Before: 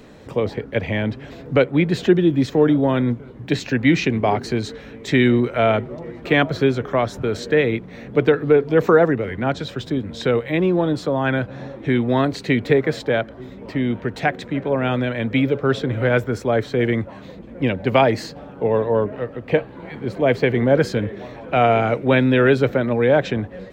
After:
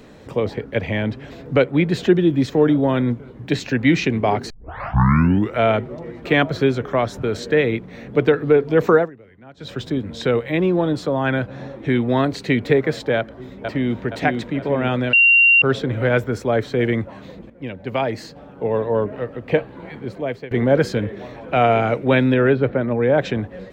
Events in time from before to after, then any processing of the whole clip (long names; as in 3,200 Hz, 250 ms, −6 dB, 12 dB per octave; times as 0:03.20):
0:04.50: tape start 1.07 s
0:08.95–0:09.72: duck −22 dB, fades 0.15 s
0:13.17–0:14.03: delay throw 470 ms, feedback 50%, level −4 dB
0:15.13–0:15.62: beep over 2,760 Hz −9 dBFS
0:17.50–0:19.20: fade in, from −12.5 dB
0:19.82–0:20.51: fade out, to −21.5 dB
0:22.34–0:23.18: high-frequency loss of the air 400 metres